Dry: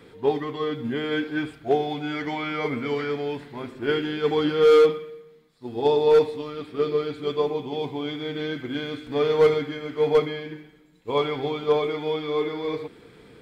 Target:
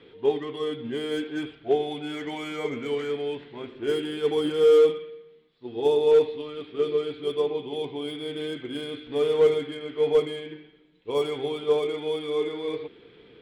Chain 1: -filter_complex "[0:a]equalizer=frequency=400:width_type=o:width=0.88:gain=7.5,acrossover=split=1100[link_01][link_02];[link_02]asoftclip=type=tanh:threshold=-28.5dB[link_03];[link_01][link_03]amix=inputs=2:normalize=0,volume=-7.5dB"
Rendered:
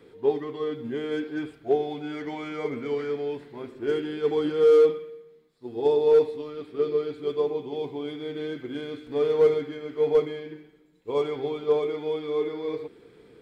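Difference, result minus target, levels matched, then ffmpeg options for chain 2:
4,000 Hz band −7.0 dB
-filter_complex "[0:a]lowpass=frequency=3200:width_type=q:width=3.2,equalizer=frequency=400:width_type=o:width=0.88:gain=7.5,acrossover=split=1100[link_01][link_02];[link_02]asoftclip=type=tanh:threshold=-28.5dB[link_03];[link_01][link_03]amix=inputs=2:normalize=0,volume=-7.5dB"

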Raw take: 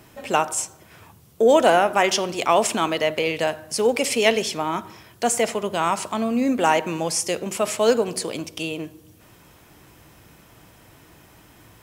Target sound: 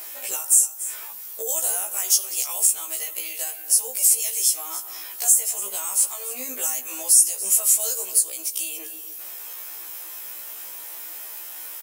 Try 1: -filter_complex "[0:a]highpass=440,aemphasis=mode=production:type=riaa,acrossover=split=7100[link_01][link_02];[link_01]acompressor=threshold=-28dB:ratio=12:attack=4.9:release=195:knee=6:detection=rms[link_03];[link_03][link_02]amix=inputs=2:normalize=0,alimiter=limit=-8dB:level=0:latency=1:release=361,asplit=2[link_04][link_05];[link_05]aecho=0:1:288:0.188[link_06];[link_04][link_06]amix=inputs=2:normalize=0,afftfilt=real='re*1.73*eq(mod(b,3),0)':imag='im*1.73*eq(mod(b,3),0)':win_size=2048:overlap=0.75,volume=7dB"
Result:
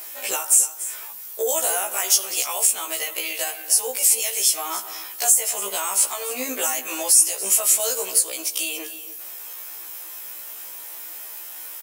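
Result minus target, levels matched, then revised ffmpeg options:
downward compressor: peak gain reduction −9.5 dB
-filter_complex "[0:a]highpass=440,aemphasis=mode=production:type=riaa,acrossover=split=7100[link_01][link_02];[link_01]acompressor=threshold=-38.5dB:ratio=12:attack=4.9:release=195:knee=6:detection=rms[link_03];[link_03][link_02]amix=inputs=2:normalize=0,alimiter=limit=-8dB:level=0:latency=1:release=361,asplit=2[link_04][link_05];[link_05]aecho=0:1:288:0.188[link_06];[link_04][link_06]amix=inputs=2:normalize=0,afftfilt=real='re*1.73*eq(mod(b,3),0)':imag='im*1.73*eq(mod(b,3),0)':win_size=2048:overlap=0.75,volume=7dB"

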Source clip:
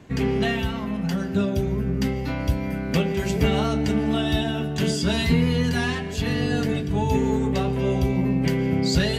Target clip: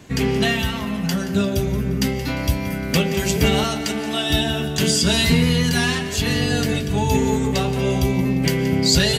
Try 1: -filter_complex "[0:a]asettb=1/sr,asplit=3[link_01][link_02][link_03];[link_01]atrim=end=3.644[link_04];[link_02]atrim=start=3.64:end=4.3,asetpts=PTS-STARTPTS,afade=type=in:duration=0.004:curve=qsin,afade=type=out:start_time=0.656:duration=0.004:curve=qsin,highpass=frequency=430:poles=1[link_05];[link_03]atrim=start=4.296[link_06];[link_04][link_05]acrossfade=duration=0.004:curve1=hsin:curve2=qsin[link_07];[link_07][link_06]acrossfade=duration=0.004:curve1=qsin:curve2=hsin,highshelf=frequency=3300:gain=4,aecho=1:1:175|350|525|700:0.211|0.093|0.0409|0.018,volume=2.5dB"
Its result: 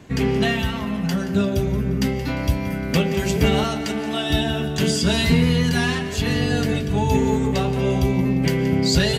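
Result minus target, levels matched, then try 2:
8,000 Hz band −5.0 dB
-filter_complex "[0:a]asettb=1/sr,asplit=3[link_01][link_02][link_03];[link_01]atrim=end=3.644[link_04];[link_02]atrim=start=3.64:end=4.3,asetpts=PTS-STARTPTS,afade=type=in:duration=0.004:curve=qsin,afade=type=out:start_time=0.656:duration=0.004:curve=qsin,highpass=frequency=430:poles=1[link_05];[link_03]atrim=start=4.296[link_06];[link_04][link_05]acrossfade=duration=0.004:curve1=hsin:curve2=qsin[link_07];[link_07][link_06]acrossfade=duration=0.004:curve1=qsin:curve2=hsin,highshelf=frequency=3300:gain=11.5,aecho=1:1:175|350|525|700:0.211|0.093|0.0409|0.018,volume=2.5dB"

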